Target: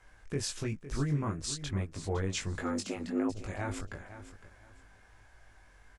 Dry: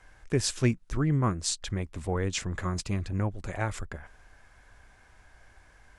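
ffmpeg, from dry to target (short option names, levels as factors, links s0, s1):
-filter_complex "[0:a]alimiter=limit=0.0944:level=0:latency=1:release=60,asettb=1/sr,asplit=3[s0][s1][s2];[s0]atrim=end=2.614[s3];[s1]atrim=start=2.61:end=3.3,asetpts=PTS-STARTPTS,afade=t=in:d=0.004:c=qsin,afade=t=out:st=0.686:d=0.004:c=qsin,afreqshift=160[s4];[s2]atrim=start=3.296[s5];[s3][s4]acrossfade=d=0.004:c1=hsin:c2=qsin[s6];[s6][s5]acrossfade=d=0.004:c1=qsin:c2=hsin,flanger=delay=19:depth=2.4:speed=1.5,asplit=2[s7][s8];[s8]aecho=0:1:509|1018|1527:0.224|0.0537|0.0129[s9];[s7][s9]amix=inputs=2:normalize=0"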